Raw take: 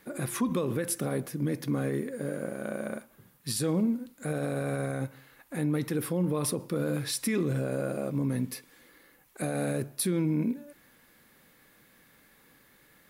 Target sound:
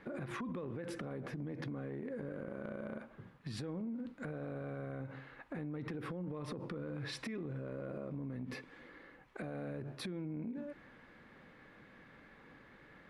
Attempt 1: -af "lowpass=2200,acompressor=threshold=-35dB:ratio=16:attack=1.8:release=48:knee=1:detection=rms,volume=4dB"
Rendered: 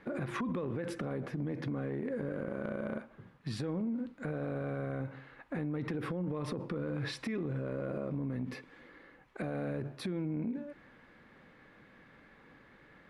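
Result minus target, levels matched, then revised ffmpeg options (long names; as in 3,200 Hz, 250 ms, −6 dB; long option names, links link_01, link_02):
downward compressor: peak gain reduction −6 dB
-af "lowpass=2200,acompressor=threshold=-41.5dB:ratio=16:attack=1.8:release=48:knee=1:detection=rms,volume=4dB"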